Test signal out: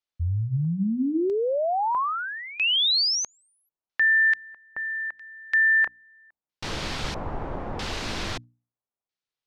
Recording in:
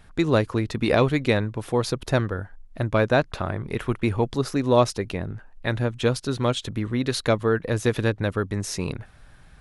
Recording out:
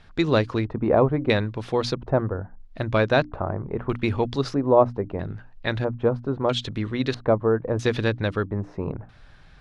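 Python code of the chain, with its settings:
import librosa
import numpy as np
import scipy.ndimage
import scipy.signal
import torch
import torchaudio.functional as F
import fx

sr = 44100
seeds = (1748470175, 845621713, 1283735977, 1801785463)

y = fx.hum_notches(x, sr, base_hz=60, count=5)
y = fx.filter_lfo_lowpass(y, sr, shape='square', hz=0.77, low_hz=910.0, high_hz=4600.0, q=1.3)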